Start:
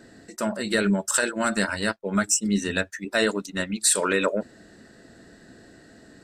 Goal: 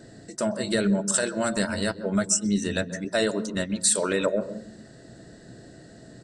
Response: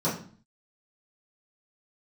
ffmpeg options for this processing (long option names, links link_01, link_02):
-filter_complex "[0:a]equalizer=frequency=1300:width_type=o:width=1.9:gain=-6,asplit=2[link_01][link_02];[1:a]atrim=start_sample=2205,lowpass=5400,adelay=126[link_03];[link_02][link_03]afir=irnorm=-1:irlink=0,volume=-27.5dB[link_04];[link_01][link_04]amix=inputs=2:normalize=0,aresample=22050,aresample=44100,asplit=2[link_05][link_06];[link_06]acompressor=threshold=-29dB:ratio=6,volume=0dB[link_07];[link_05][link_07]amix=inputs=2:normalize=0,equalizer=frequency=125:width_type=o:width=0.33:gain=10,equalizer=frequency=250:width_type=o:width=0.33:gain=-3,equalizer=frequency=630:width_type=o:width=0.33:gain=5,equalizer=frequency=2500:width_type=o:width=0.33:gain=-4,volume=-3dB"